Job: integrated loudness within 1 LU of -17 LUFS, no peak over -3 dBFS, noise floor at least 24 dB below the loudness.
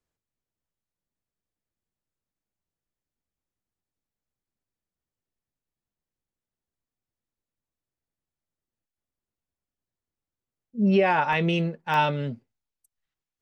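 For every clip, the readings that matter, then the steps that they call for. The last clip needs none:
dropouts 2; longest dropout 1.6 ms; loudness -23.5 LUFS; peak level -10.0 dBFS; loudness target -17.0 LUFS
-> interpolate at 11.33/11.94 s, 1.6 ms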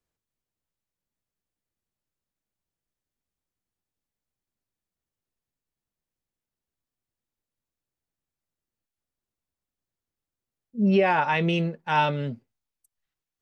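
dropouts 0; loudness -23.5 LUFS; peak level -10.0 dBFS; loudness target -17.0 LUFS
-> trim +6.5 dB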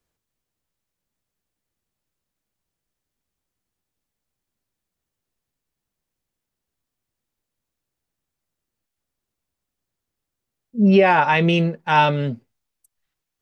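loudness -17.0 LUFS; peak level -3.5 dBFS; noise floor -84 dBFS

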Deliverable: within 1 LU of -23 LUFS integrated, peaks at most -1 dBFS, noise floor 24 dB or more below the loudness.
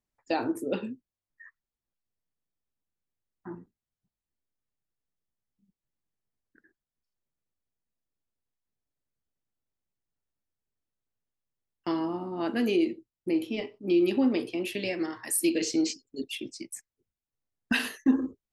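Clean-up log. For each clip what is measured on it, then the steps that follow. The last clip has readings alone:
loudness -29.5 LUFS; peak level -13.0 dBFS; loudness target -23.0 LUFS
-> trim +6.5 dB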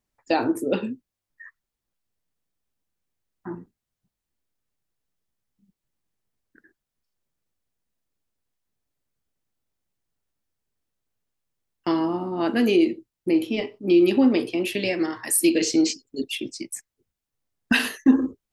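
loudness -23.0 LUFS; peak level -6.5 dBFS; noise floor -86 dBFS

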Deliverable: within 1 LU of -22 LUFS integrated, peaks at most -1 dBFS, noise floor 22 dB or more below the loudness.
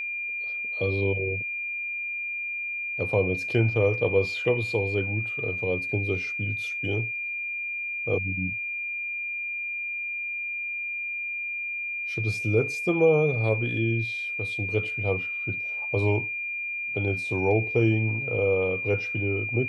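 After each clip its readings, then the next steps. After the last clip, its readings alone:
steady tone 2.4 kHz; tone level -29 dBFS; loudness -26.5 LUFS; peak level -10.5 dBFS; loudness target -22.0 LUFS
-> band-stop 2.4 kHz, Q 30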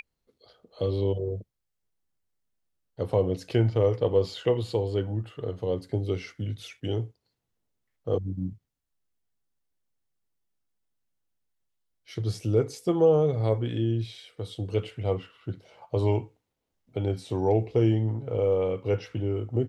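steady tone not found; loudness -28.0 LUFS; peak level -11.0 dBFS; loudness target -22.0 LUFS
-> trim +6 dB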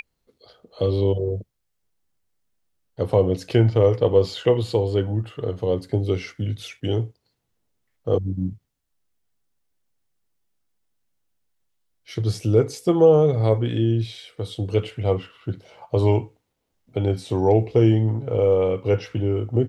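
loudness -22.0 LUFS; peak level -5.0 dBFS; noise floor -75 dBFS

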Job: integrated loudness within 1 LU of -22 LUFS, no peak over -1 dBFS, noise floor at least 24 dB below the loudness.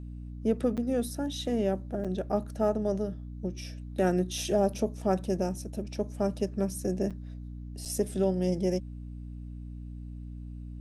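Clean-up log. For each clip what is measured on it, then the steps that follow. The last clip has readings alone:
dropouts 4; longest dropout 6.7 ms; hum 60 Hz; highest harmonic 300 Hz; hum level -38 dBFS; loudness -30.5 LUFS; peak level -14.0 dBFS; loudness target -22.0 LUFS
-> interpolate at 0.77/2.04/7.10/7.85 s, 6.7 ms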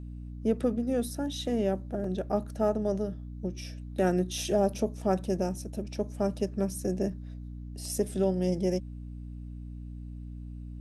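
dropouts 0; hum 60 Hz; highest harmonic 300 Hz; hum level -38 dBFS
-> hum notches 60/120/180/240/300 Hz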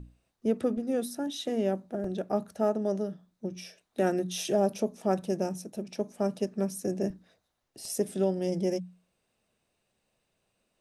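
hum not found; loudness -31.0 LUFS; peak level -14.5 dBFS; loudness target -22.0 LUFS
-> trim +9 dB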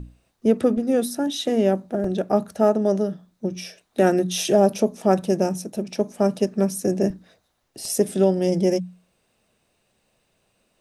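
loudness -22.0 LUFS; peak level -5.5 dBFS; noise floor -70 dBFS

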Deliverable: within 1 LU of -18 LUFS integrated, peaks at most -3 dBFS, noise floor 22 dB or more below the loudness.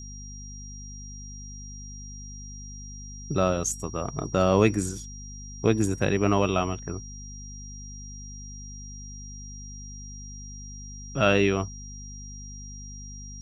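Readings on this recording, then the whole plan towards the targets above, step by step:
hum 50 Hz; highest harmonic 250 Hz; hum level -39 dBFS; steady tone 5.7 kHz; tone level -43 dBFS; loudness -25.5 LUFS; peak level -7.0 dBFS; loudness target -18.0 LUFS
-> de-hum 50 Hz, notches 5; band-stop 5.7 kHz, Q 30; trim +7.5 dB; peak limiter -3 dBFS

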